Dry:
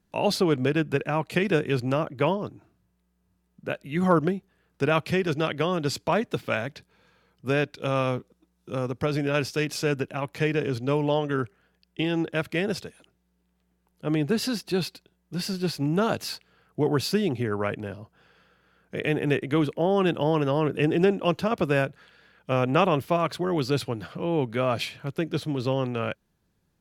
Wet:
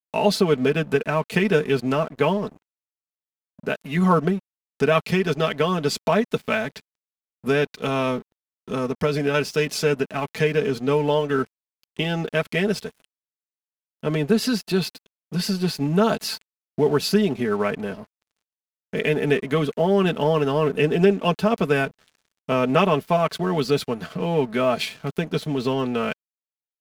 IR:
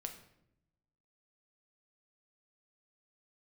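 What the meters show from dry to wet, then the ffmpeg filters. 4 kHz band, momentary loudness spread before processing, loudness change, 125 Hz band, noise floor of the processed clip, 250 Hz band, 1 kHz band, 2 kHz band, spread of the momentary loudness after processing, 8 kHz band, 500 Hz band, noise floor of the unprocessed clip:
+4.0 dB, 12 LU, +3.5 dB, +2.0 dB, under -85 dBFS, +3.0 dB, +3.5 dB, +4.0 dB, 10 LU, +4.0 dB, +4.5 dB, -72 dBFS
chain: -filter_complex "[0:a]aecho=1:1:4.6:0.73,asplit=2[a][b];[b]acompressor=threshold=-31dB:ratio=6,volume=1.5dB[c];[a][c]amix=inputs=2:normalize=0,aeval=exprs='sgn(val(0))*max(abs(val(0))-0.0075,0)':c=same"

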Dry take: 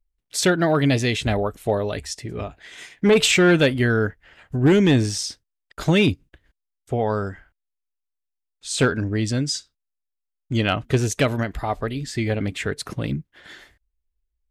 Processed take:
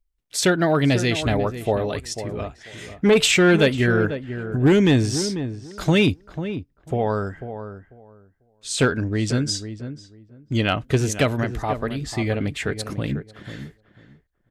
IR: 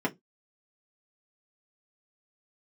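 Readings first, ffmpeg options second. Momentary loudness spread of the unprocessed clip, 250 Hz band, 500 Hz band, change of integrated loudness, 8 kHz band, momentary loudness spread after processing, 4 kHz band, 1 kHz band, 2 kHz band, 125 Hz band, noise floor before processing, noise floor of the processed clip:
14 LU, +0.5 dB, +0.5 dB, 0.0 dB, 0.0 dB, 18 LU, 0.0 dB, +0.5 dB, 0.0 dB, +0.5 dB, -81 dBFS, -67 dBFS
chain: -filter_complex "[0:a]asplit=2[a][b];[b]adelay=494,lowpass=f=1.3k:p=1,volume=-10dB,asplit=2[c][d];[d]adelay=494,lowpass=f=1.3k:p=1,volume=0.19,asplit=2[e][f];[f]adelay=494,lowpass=f=1.3k:p=1,volume=0.19[g];[a][c][e][g]amix=inputs=4:normalize=0"

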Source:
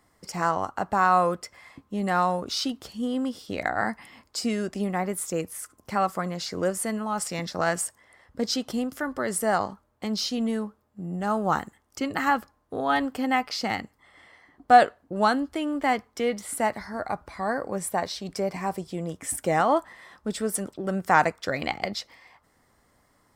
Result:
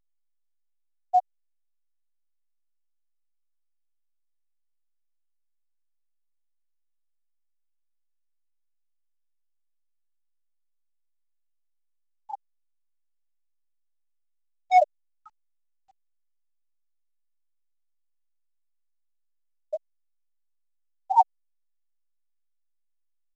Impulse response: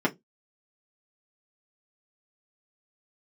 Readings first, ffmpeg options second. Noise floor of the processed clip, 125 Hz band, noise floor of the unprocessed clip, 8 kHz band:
-72 dBFS, under -40 dB, -66 dBFS, under -25 dB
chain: -filter_complex "[0:a]highpass=460,afftfilt=real='re*gte(hypot(re,im),1)':imag='im*gte(hypot(re,im),1)':win_size=1024:overlap=0.75,highshelf=f=2.3k:g=-3,aecho=1:1:6.5:0.81,adynamicequalizer=threshold=0.01:dfrequency=4300:dqfactor=0.86:tfrequency=4300:tqfactor=0.86:attack=5:release=100:ratio=0.375:range=2:mode=boostabove:tftype=bell,asplit=2[a][b];[b]acompressor=threshold=-23dB:ratio=16,volume=2dB[c];[a][c]amix=inputs=2:normalize=0,asoftclip=type=hard:threshold=-9dB,acrossover=split=2300[d][e];[d]aeval=exprs='val(0)*(1-1/2+1/2*cos(2*PI*3.3*n/s))':c=same[f];[e]aeval=exprs='val(0)*(1-1/2-1/2*cos(2*PI*3.3*n/s))':c=same[g];[f][g]amix=inputs=2:normalize=0,volume=1.5dB" -ar 16000 -c:a pcm_alaw

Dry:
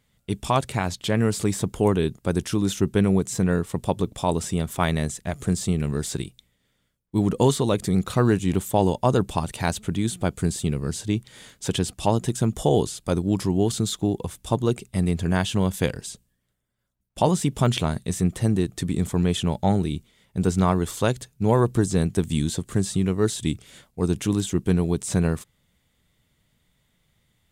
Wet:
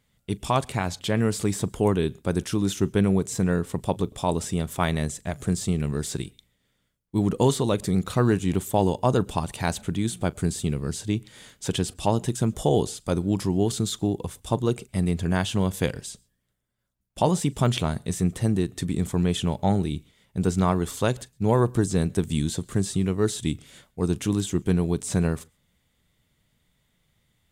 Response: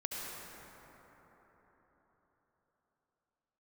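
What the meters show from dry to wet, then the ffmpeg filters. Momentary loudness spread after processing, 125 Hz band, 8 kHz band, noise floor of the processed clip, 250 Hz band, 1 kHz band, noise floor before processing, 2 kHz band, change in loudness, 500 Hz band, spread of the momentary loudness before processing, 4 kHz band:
7 LU, -1.5 dB, -1.5 dB, -72 dBFS, -1.5 dB, -1.5 dB, -71 dBFS, -1.5 dB, -1.5 dB, -1.5 dB, 7 LU, -1.5 dB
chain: -filter_complex "[0:a]asplit=2[a][b];[1:a]atrim=start_sample=2205,afade=t=out:st=0.15:d=0.01,atrim=end_sample=7056,adelay=40[c];[b][c]afir=irnorm=-1:irlink=0,volume=-20.5dB[d];[a][d]amix=inputs=2:normalize=0,volume=-1.5dB"

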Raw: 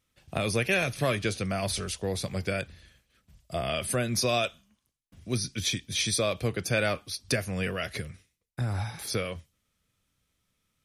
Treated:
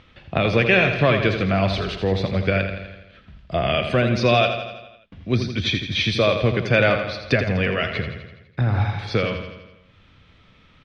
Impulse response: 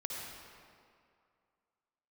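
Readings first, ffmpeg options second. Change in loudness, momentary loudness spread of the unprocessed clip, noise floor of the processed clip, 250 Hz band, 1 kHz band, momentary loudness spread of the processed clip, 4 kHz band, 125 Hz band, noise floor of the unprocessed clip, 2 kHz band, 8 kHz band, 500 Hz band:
+9.0 dB, 11 LU, -54 dBFS, +10.0 dB, +10.0 dB, 14 LU, +6.0 dB, +10.0 dB, -78 dBFS, +10.0 dB, -12.0 dB, +10.0 dB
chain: -filter_complex "[0:a]acompressor=mode=upward:threshold=-47dB:ratio=2.5,lowpass=f=3.6k:w=0.5412,lowpass=f=3.6k:w=1.3066,asplit=2[a][b];[b]aecho=0:1:83|166|249|332|415|498|581:0.398|0.235|0.139|0.0818|0.0482|0.0285|0.0168[c];[a][c]amix=inputs=2:normalize=0,volume=9dB"

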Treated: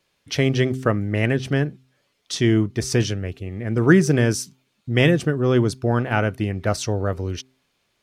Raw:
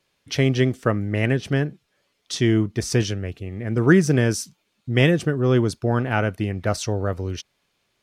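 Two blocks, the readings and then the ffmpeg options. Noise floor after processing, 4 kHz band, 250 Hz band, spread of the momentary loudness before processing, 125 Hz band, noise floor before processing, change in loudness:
-70 dBFS, +1.0 dB, +1.0 dB, 12 LU, +0.5 dB, -72 dBFS, +0.5 dB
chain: -af "bandreject=f=130.2:t=h:w=4,bandreject=f=260.4:t=h:w=4,bandreject=f=390.6:t=h:w=4,volume=1dB"

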